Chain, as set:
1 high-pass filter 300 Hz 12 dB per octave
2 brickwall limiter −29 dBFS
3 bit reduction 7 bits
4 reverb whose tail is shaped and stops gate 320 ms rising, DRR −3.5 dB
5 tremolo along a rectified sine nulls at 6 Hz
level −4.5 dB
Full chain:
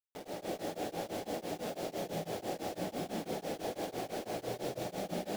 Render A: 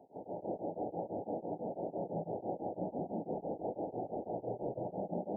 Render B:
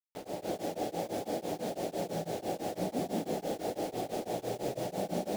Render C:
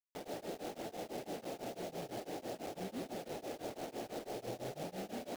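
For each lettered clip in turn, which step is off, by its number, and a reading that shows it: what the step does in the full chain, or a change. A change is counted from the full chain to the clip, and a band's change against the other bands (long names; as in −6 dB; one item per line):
3, distortion level −10 dB
2, average gain reduction 3.5 dB
4, change in crest factor −5.5 dB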